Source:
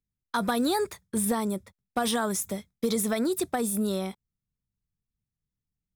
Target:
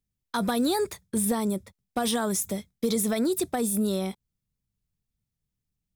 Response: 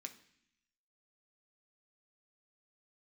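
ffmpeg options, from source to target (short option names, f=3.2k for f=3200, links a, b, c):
-filter_complex "[0:a]equalizer=f=1.3k:t=o:w=1.6:g=-4.5,asplit=2[a][b];[b]alimiter=level_in=1.5dB:limit=-24dB:level=0:latency=1,volume=-1.5dB,volume=-1.5dB[c];[a][c]amix=inputs=2:normalize=0,volume=-1.5dB"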